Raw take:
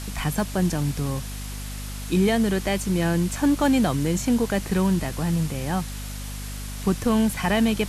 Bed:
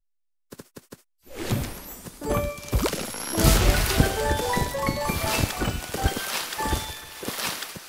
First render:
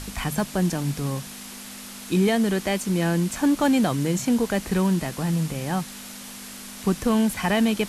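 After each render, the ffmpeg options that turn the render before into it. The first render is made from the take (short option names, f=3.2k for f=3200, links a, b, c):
-af "bandreject=f=50:t=h:w=4,bandreject=f=100:t=h:w=4,bandreject=f=150:t=h:w=4"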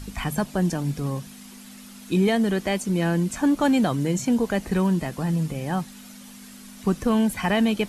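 -af "afftdn=nr=9:nf=-39"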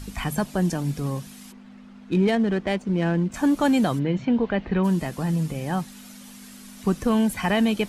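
-filter_complex "[0:a]asplit=3[a][b][c];[a]afade=t=out:st=1.51:d=0.02[d];[b]adynamicsmooth=sensitivity=2.5:basefreq=1.8k,afade=t=in:st=1.51:d=0.02,afade=t=out:st=3.33:d=0.02[e];[c]afade=t=in:st=3.33:d=0.02[f];[d][e][f]amix=inputs=3:normalize=0,asplit=3[g][h][i];[g]afade=t=out:st=3.98:d=0.02[j];[h]lowpass=f=3.4k:w=0.5412,lowpass=f=3.4k:w=1.3066,afade=t=in:st=3.98:d=0.02,afade=t=out:st=4.83:d=0.02[k];[i]afade=t=in:st=4.83:d=0.02[l];[j][k][l]amix=inputs=3:normalize=0"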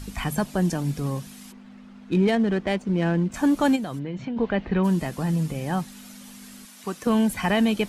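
-filter_complex "[0:a]asplit=3[a][b][c];[a]afade=t=out:st=3.75:d=0.02[d];[b]acompressor=threshold=-27dB:ratio=6:attack=3.2:release=140:knee=1:detection=peak,afade=t=in:st=3.75:d=0.02,afade=t=out:st=4.36:d=0.02[e];[c]afade=t=in:st=4.36:d=0.02[f];[d][e][f]amix=inputs=3:normalize=0,asettb=1/sr,asplit=3[g][h][i];[g]atrim=end=6.654[j];[h]atrim=start=6.65:end=7.07,asetpts=PTS-STARTPTS,afade=t=in:d=0.004:c=qsin,afade=t=out:st=0.416:d=0.004:c=qsin,highpass=f=690:p=1[k];[i]atrim=start=7.066[l];[j][k]acrossfade=d=0.004:c1=hsin:c2=qsin[m];[m][l]acrossfade=d=0.004:c1=qsin:c2=hsin"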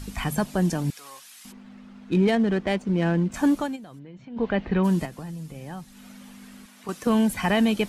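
-filter_complex "[0:a]asettb=1/sr,asplit=3[a][b][c];[a]atrim=end=0.904[d];[b]atrim=start=0.9:end=1.45,asetpts=PTS-STARTPTS,afade=t=in:d=0.004:c=qsin,afade=t=out:st=0.546:d=0.004:c=qsin,highpass=1.3k[e];[c]atrim=start=1.446[f];[d][e]acrossfade=d=0.004:c1=hsin:c2=qsin[g];[g][f]acrossfade=d=0.004:c1=qsin:c2=hsin,asettb=1/sr,asplit=3[h][i][j];[h]atrim=end=5.054[k];[i]atrim=start=5.05:end=6.89,asetpts=PTS-STARTPTS,afade=t=in:d=0.004:c=qsin,afade=t=out:st=1.836:d=0.004:c=qsin,acrossover=split=86|3100[l][m][n];[l]acompressor=threshold=-51dB:ratio=4[o];[m]acompressor=threshold=-37dB:ratio=4[p];[n]acompressor=threshold=-56dB:ratio=4[q];[o][p][q]amix=inputs=3:normalize=0[r];[j]atrim=start=6.886[s];[k][r]acrossfade=d=0.004:c1=hsin:c2=qsin[t];[t][s]acrossfade=d=0.004:c1=qsin:c2=hsin,asplit=3[u][v][w];[u]atrim=end=3.68,asetpts=PTS-STARTPTS,afade=t=out:st=3.47:d=0.21:c=qsin:silence=0.251189[x];[v]atrim=start=3.68:end=4.3,asetpts=PTS-STARTPTS,volume=-12dB[y];[w]atrim=start=4.3,asetpts=PTS-STARTPTS,afade=t=in:d=0.21:c=qsin:silence=0.251189[z];[x][y][z]concat=n=3:v=0:a=1"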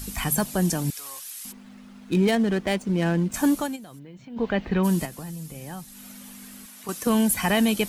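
-af "aemphasis=mode=production:type=50fm"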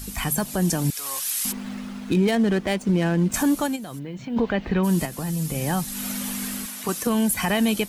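-af "dynaudnorm=f=340:g=3:m=14dB,alimiter=limit=-13dB:level=0:latency=1:release=391"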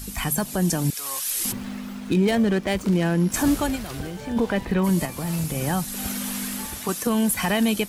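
-filter_complex "[1:a]volume=-14dB[a];[0:a][a]amix=inputs=2:normalize=0"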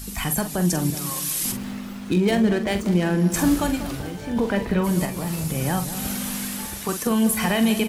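-filter_complex "[0:a]asplit=2[a][b];[b]adelay=45,volume=-9dB[c];[a][c]amix=inputs=2:normalize=0,asplit=2[d][e];[e]adelay=193,lowpass=f=1.1k:p=1,volume=-10.5dB,asplit=2[f][g];[g]adelay=193,lowpass=f=1.1k:p=1,volume=0.54,asplit=2[h][i];[i]adelay=193,lowpass=f=1.1k:p=1,volume=0.54,asplit=2[j][k];[k]adelay=193,lowpass=f=1.1k:p=1,volume=0.54,asplit=2[l][m];[m]adelay=193,lowpass=f=1.1k:p=1,volume=0.54,asplit=2[n][o];[o]adelay=193,lowpass=f=1.1k:p=1,volume=0.54[p];[d][f][h][j][l][n][p]amix=inputs=7:normalize=0"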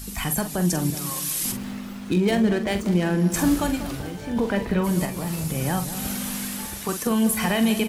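-af "volume=-1dB"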